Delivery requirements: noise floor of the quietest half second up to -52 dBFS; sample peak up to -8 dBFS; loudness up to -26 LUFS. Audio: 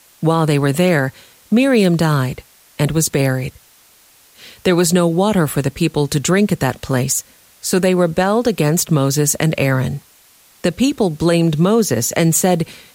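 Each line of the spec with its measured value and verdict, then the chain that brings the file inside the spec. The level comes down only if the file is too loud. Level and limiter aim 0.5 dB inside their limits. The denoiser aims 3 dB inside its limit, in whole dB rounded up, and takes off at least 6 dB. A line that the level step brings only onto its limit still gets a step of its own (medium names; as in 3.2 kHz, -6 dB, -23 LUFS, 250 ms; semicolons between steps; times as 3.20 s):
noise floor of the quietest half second -50 dBFS: fail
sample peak -4.0 dBFS: fail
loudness -16.0 LUFS: fail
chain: trim -10.5 dB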